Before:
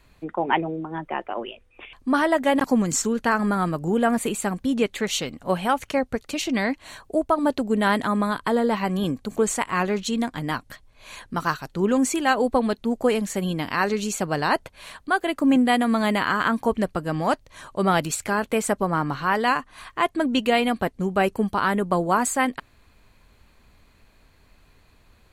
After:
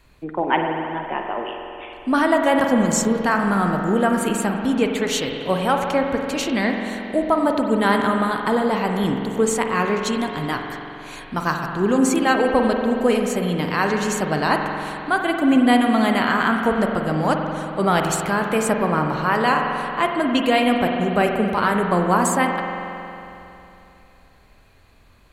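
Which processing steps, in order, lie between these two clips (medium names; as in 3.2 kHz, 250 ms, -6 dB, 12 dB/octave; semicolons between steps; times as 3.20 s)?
spring tank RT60 3 s, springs 45 ms, chirp 50 ms, DRR 2.5 dB; trim +1.5 dB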